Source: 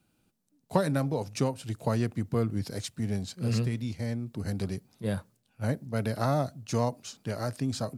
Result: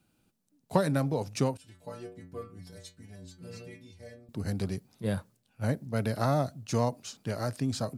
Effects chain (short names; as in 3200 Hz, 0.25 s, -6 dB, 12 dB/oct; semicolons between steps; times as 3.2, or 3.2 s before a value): 1.57–4.29 metallic resonator 87 Hz, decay 0.57 s, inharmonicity 0.008